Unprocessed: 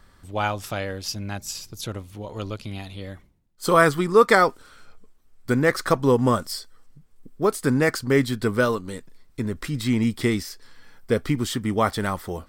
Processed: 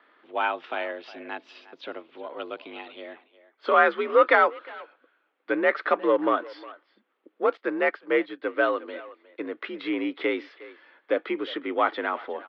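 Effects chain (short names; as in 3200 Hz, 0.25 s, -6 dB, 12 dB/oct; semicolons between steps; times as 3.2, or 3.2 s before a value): low shelf 460 Hz -4.5 dB; speakerphone echo 0.36 s, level -16 dB; in parallel at -3 dB: soft clip -18 dBFS, distortion -9 dB; on the sum: mistuned SSB +60 Hz 240–3200 Hz; 7.57–8.61 upward expander 1.5:1, over -43 dBFS; gain -3.5 dB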